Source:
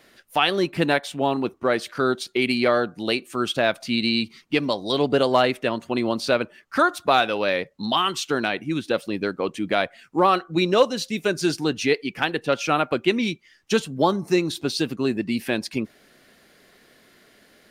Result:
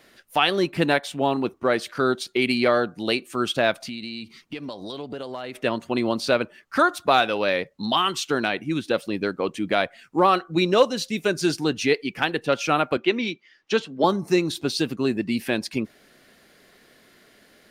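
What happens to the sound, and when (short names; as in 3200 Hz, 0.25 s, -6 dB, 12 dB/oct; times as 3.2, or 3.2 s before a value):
3.85–5.55 compressor 5:1, threshold -31 dBFS
12.97–14.04 three-band isolator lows -15 dB, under 220 Hz, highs -21 dB, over 5500 Hz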